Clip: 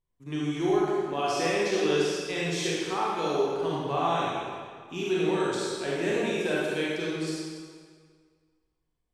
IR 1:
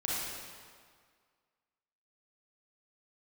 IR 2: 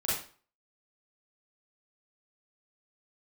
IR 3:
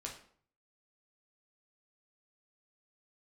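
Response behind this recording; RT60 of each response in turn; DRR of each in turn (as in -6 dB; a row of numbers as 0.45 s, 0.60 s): 1; 1.9 s, 0.40 s, 0.55 s; -6.5 dB, -9.0 dB, -1.0 dB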